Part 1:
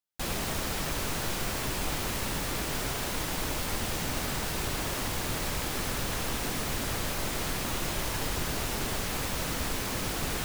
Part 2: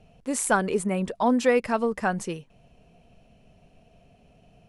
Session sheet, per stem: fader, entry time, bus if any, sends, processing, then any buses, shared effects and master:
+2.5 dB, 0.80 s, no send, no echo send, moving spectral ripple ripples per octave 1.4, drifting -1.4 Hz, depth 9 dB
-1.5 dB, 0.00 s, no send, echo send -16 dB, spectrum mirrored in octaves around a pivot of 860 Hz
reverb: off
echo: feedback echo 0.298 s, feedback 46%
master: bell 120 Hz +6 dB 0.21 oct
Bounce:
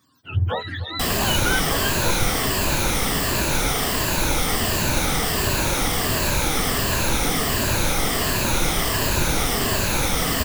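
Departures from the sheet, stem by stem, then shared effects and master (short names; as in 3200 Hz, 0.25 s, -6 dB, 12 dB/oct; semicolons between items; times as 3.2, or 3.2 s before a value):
stem 1 +2.5 dB -> +9.5 dB; master: missing bell 120 Hz +6 dB 0.21 oct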